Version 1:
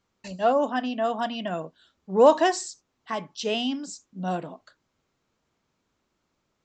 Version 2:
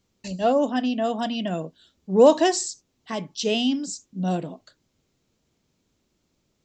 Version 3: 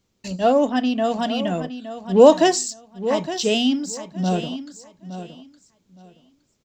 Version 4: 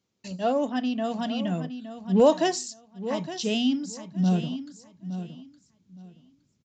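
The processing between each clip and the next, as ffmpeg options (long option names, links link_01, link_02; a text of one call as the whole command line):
ffmpeg -i in.wav -af "equalizer=frequency=1200:width_type=o:width=2:gain=-11.5,volume=7dB" out.wav
ffmpeg -i in.wav -filter_complex "[0:a]asplit=2[link_01][link_02];[link_02]aeval=exprs='sgn(val(0))*max(abs(val(0))-0.0141,0)':channel_layout=same,volume=-9dB[link_03];[link_01][link_03]amix=inputs=2:normalize=0,aecho=1:1:865|1730|2595:0.251|0.0502|0.01,volume=1dB" out.wav
ffmpeg -i in.wav -af "highpass=120,aresample=16000,aresample=44100,asubboost=boost=7.5:cutoff=200,volume=-7dB" out.wav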